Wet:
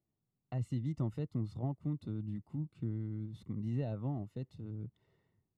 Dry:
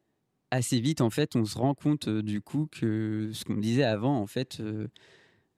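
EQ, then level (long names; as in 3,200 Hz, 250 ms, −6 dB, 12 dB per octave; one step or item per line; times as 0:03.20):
Savitzky-Golay smoothing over 65 samples
parametric band 320 Hz −8 dB 1.7 octaves
parametric band 820 Hz −11.5 dB 2.3 octaves
−2.5 dB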